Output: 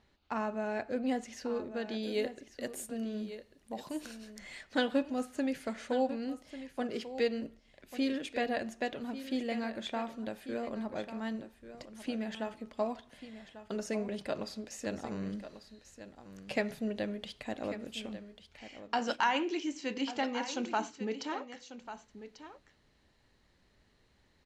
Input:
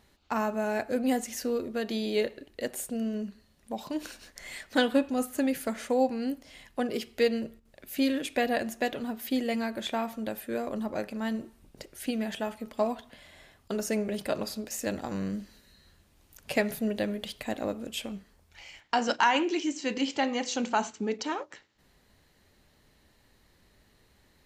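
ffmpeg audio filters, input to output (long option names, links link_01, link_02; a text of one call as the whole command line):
ffmpeg -i in.wav -af "asetnsamples=nb_out_samples=441:pad=0,asendcmd='2.03 lowpass f 12000;4.39 lowpass f 6600',lowpass=4900,aecho=1:1:1143:0.237,volume=-5.5dB" out.wav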